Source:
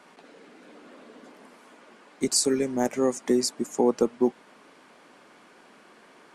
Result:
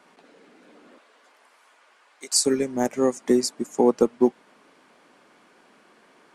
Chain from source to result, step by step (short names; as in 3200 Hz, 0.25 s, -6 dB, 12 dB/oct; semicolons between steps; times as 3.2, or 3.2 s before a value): 0.98–2.45 HPF 810 Hz 12 dB/oct; upward expander 1.5:1, over -32 dBFS; gain +4.5 dB